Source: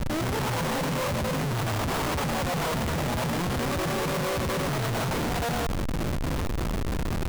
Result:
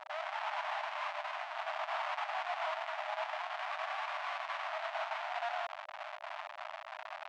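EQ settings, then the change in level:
linear-phase brick-wall high-pass 600 Hz
dynamic equaliser 2,700 Hz, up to +5 dB, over −45 dBFS, Q 1
head-to-tape spacing loss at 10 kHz 35 dB
−3.0 dB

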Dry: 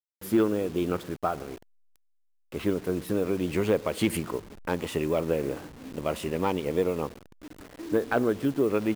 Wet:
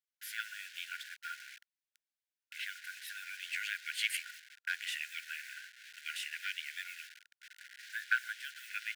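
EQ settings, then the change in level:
linear-phase brick-wall high-pass 1,400 Hz
high-shelf EQ 5,200 Hz −7.5 dB
high-shelf EQ 11,000 Hz −4.5 dB
+3.5 dB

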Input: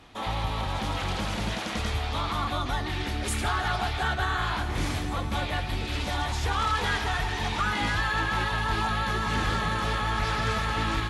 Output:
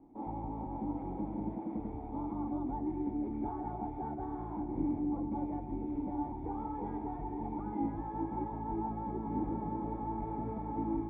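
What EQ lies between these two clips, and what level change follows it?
formant resonators in series u
parametric band 77 Hz −10 dB 0.87 octaves
+5.5 dB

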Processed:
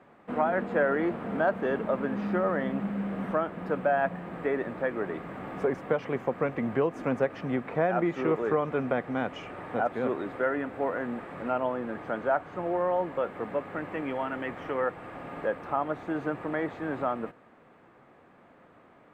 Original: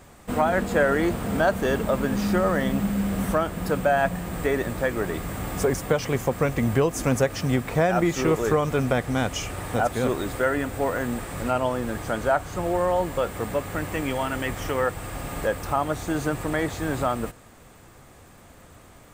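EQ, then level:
three-way crossover with the lows and the highs turned down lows −22 dB, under 160 Hz, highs −23 dB, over 2,800 Hz
high-shelf EQ 5,200 Hz −8 dB
−4.0 dB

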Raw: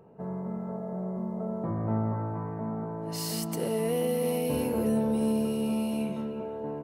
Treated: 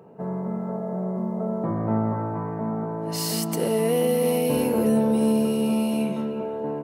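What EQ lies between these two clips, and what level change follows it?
high-pass filter 130 Hz 12 dB per octave
+6.5 dB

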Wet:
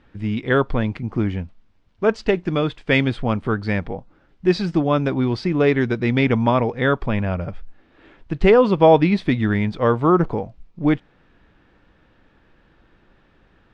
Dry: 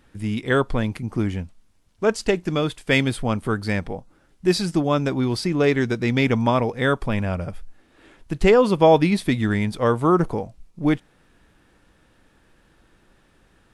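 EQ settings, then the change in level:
low-pass filter 4,000 Hz 12 dB per octave
high-frequency loss of the air 64 metres
+2.0 dB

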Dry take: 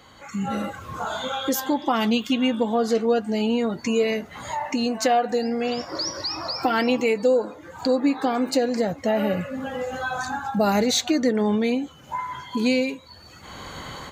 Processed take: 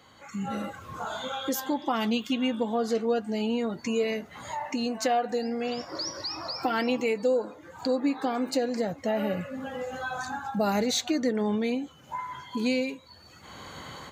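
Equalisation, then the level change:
high-pass filter 69 Hz
−5.5 dB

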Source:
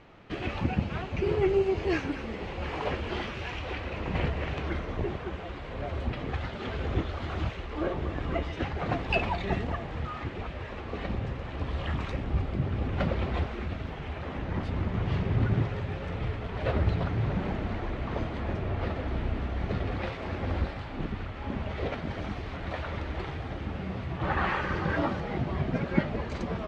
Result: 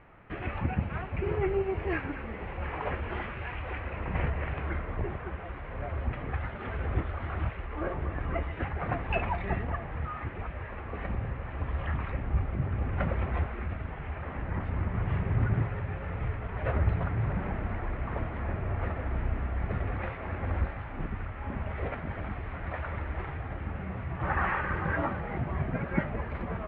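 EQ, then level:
low-pass filter 2,200 Hz 24 dB per octave
parametric band 310 Hz −7 dB 2.5 octaves
+2.0 dB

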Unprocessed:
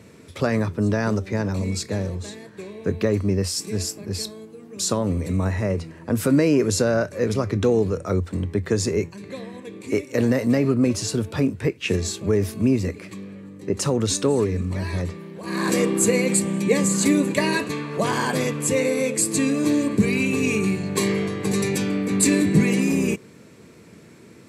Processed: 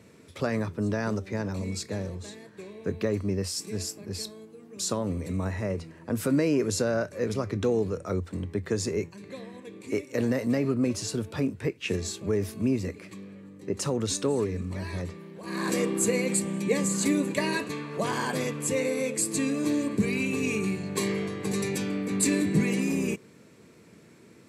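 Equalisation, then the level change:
low-shelf EQ 64 Hz −7 dB
−6.0 dB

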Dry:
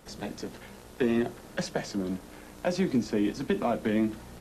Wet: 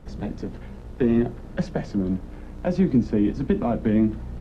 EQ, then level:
RIAA equalisation playback
0.0 dB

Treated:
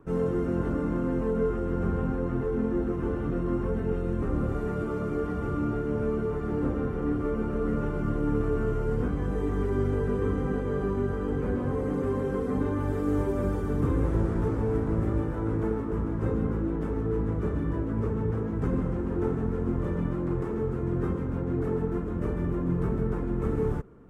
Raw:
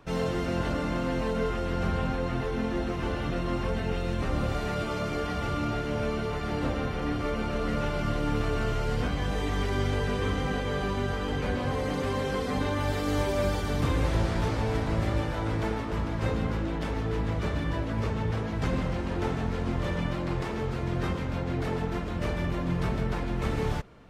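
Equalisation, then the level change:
drawn EQ curve 110 Hz 0 dB, 430 Hz +5 dB, 620 Hz −8 dB, 1,300 Hz −3 dB, 2,200 Hz −14 dB, 4,300 Hz −23 dB, 8,200 Hz −10 dB
0.0 dB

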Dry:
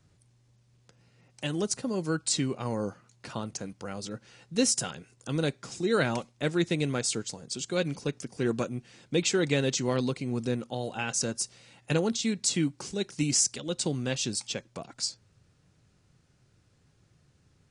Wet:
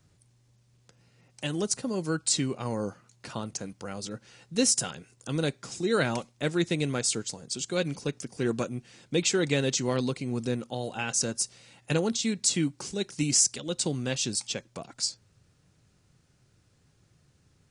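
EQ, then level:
high-shelf EQ 6,200 Hz +4.5 dB
0.0 dB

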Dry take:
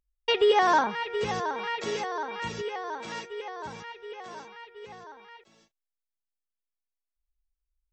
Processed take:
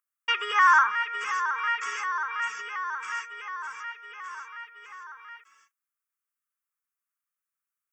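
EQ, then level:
high-pass with resonance 1,200 Hz, resonance Q 4.9
high-shelf EQ 3,500 Hz +7.5 dB
phaser with its sweep stopped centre 1,700 Hz, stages 4
+1.0 dB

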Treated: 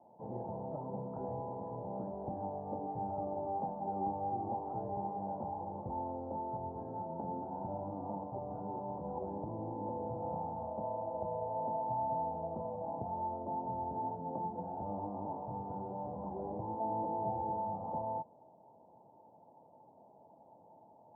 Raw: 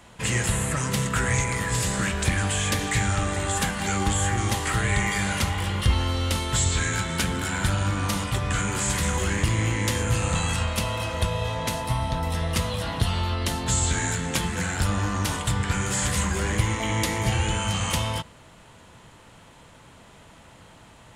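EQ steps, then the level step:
high-pass filter 89 Hz
Chebyshev low-pass with heavy ripple 900 Hz, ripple 3 dB
first difference
+17.0 dB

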